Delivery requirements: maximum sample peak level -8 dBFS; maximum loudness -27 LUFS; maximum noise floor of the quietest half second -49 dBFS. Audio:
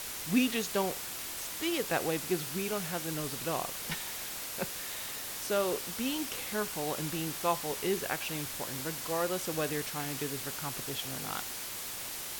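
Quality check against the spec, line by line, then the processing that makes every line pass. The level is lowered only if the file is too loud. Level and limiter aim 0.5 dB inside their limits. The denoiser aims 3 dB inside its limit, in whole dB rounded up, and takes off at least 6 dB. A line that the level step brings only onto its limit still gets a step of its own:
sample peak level -16.0 dBFS: OK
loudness -33.5 LUFS: OK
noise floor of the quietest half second -40 dBFS: fail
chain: denoiser 12 dB, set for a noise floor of -40 dBFS

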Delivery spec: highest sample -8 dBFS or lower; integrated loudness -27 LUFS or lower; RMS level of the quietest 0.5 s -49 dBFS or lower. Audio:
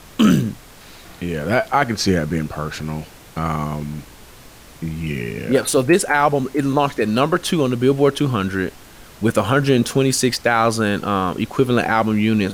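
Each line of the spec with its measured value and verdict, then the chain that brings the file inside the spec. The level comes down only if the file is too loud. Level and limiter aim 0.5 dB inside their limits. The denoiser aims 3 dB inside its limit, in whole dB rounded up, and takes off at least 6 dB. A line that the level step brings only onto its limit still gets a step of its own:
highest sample -4.0 dBFS: fail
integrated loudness -19.0 LUFS: fail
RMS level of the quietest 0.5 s -42 dBFS: fail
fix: gain -8.5 dB

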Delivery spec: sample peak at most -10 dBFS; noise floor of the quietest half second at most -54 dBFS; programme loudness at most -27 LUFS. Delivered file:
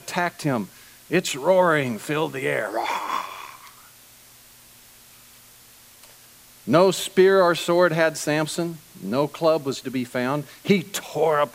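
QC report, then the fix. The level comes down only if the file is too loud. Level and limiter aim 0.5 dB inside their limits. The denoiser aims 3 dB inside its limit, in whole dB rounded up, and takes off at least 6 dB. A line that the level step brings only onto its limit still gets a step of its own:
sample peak -3.5 dBFS: fail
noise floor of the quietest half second -50 dBFS: fail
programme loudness -22.0 LUFS: fail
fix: gain -5.5 dB; limiter -10.5 dBFS

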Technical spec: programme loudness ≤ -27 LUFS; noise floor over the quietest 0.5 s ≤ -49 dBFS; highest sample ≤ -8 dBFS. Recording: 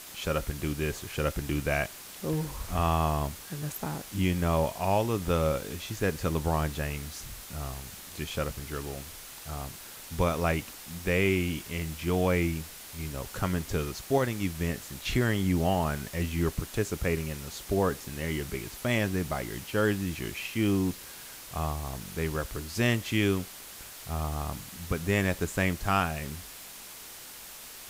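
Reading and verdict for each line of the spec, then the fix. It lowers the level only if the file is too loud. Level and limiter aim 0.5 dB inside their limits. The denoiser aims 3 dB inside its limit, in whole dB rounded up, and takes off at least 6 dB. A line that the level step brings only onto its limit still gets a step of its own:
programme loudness -30.5 LUFS: OK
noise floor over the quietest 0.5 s -45 dBFS: fail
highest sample -12.0 dBFS: OK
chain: denoiser 7 dB, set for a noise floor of -45 dBFS

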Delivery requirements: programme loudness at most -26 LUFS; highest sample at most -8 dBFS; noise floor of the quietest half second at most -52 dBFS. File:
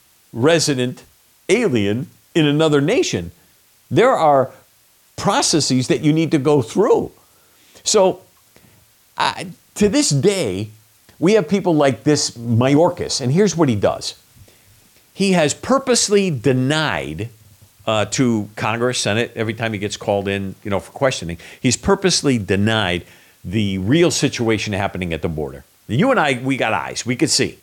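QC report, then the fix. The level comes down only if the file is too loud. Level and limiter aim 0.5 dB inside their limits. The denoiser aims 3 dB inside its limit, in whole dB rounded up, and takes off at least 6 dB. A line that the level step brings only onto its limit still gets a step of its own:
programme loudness -17.5 LUFS: fail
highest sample -3.5 dBFS: fail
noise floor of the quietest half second -54 dBFS: OK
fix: gain -9 dB

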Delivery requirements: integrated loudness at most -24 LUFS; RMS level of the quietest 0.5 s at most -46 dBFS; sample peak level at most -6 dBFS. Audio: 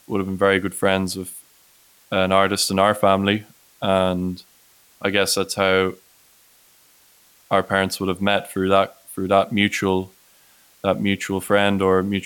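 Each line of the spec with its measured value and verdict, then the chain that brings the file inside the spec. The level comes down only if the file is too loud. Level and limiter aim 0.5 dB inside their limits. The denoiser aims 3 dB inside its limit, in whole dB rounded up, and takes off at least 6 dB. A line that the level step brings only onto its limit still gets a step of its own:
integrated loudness -20.5 LUFS: fail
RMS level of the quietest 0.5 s -55 dBFS: OK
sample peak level -3.0 dBFS: fail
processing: gain -4 dB

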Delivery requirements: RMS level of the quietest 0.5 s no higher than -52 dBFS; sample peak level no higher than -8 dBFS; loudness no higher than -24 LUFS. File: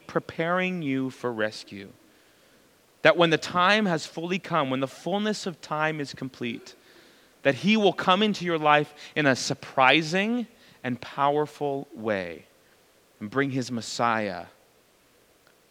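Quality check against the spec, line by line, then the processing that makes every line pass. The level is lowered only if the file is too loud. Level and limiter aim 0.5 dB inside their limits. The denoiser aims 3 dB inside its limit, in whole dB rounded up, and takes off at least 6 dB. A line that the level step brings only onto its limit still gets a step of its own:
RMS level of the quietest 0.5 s -61 dBFS: OK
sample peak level -2.0 dBFS: fail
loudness -25.5 LUFS: OK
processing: limiter -8.5 dBFS

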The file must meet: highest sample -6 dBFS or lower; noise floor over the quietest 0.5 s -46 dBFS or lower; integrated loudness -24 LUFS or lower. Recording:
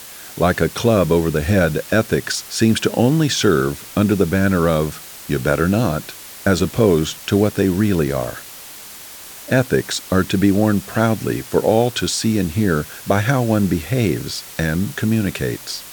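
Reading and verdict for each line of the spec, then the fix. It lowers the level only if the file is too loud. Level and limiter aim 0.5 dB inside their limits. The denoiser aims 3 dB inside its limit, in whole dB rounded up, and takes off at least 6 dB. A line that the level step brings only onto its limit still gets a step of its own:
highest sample -1.5 dBFS: fail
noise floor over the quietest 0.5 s -37 dBFS: fail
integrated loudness -18.5 LUFS: fail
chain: denoiser 6 dB, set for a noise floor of -37 dBFS; gain -6 dB

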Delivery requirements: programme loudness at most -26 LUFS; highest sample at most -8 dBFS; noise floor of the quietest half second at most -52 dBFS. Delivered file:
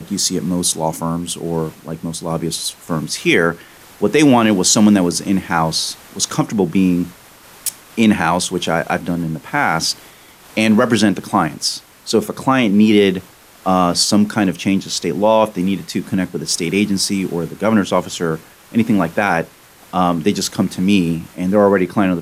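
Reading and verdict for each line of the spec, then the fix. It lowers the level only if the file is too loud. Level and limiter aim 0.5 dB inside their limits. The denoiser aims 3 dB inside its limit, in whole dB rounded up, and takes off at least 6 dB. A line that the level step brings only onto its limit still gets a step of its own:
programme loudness -16.5 LUFS: fail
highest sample -2.0 dBFS: fail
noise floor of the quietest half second -43 dBFS: fail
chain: gain -10 dB

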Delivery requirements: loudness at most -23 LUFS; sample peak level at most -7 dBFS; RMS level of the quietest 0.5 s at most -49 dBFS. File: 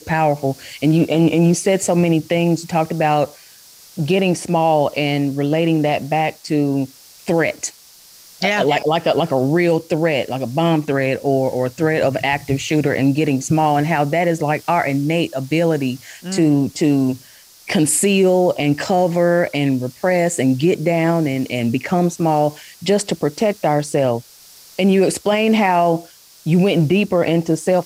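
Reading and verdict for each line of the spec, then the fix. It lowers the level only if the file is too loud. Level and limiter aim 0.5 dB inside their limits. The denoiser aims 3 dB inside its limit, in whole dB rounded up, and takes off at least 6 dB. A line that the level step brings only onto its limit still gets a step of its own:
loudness -17.5 LUFS: fail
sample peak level -5.5 dBFS: fail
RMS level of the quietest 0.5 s -45 dBFS: fail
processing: gain -6 dB

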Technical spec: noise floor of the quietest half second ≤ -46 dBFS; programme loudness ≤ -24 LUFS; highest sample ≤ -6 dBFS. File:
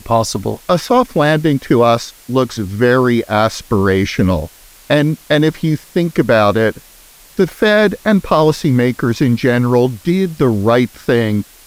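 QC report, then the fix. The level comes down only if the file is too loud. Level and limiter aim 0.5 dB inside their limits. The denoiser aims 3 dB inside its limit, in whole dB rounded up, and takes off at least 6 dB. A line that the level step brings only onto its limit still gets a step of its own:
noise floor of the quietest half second -43 dBFS: fail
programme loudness -14.5 LUFS: fail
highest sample -1.5 dBFS: fail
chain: gain -10 dB

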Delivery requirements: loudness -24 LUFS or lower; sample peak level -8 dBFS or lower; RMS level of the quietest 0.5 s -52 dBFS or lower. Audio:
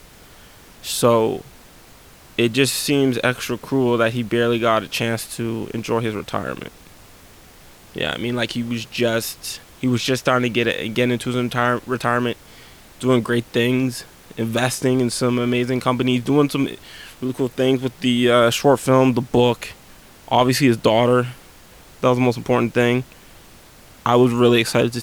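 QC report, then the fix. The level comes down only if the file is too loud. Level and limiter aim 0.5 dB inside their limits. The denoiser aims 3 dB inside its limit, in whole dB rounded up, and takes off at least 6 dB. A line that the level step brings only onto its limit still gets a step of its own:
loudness -19.5 LUFS: fail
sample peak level -3.5 dBFS: fail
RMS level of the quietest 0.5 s -46 dBFS: fail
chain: denoiser 6 dB, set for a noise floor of -46 dBFS; gain -5 dB

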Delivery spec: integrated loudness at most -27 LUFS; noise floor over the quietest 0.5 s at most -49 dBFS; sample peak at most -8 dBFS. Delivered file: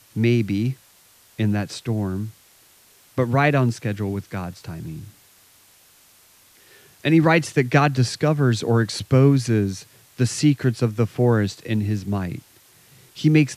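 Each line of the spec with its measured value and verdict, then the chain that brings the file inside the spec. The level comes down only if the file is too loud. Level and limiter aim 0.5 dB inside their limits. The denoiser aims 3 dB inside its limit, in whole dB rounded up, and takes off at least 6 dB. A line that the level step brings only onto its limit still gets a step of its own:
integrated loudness -21.0 LUFS: fail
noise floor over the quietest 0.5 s -54 dBFS: OK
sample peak -3.5 dBFS: fail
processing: gain -6.5 dB

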